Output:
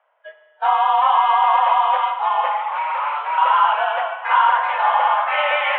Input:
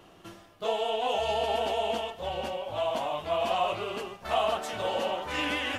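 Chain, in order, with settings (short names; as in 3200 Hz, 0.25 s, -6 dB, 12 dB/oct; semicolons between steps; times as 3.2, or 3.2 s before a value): spectral noise reduction 24 dB; in parallel at +2 dB: limiter -23.5 dBFS, peak gain reduction 7.5 dB; 2.51–3.38 on the sum: hard clip -28 dBFS, distortion -13 dB; spring tank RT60 1.9 s, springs 46 ms, chirp 55 ms, DRR 8 dB; mistuned SSB +290 Hz 250–2300 Hz; gain +7.5 dB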